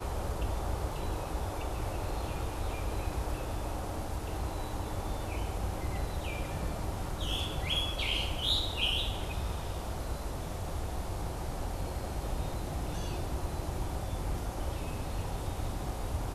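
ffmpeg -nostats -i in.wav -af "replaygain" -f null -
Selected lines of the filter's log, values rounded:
track_gain = +14.5 dB
track_peak = 0.101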